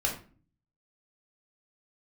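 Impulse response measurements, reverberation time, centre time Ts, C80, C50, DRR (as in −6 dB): non-exponential decay, 23 ms, 12.5 dB, 7.5 dB, −2.0 dB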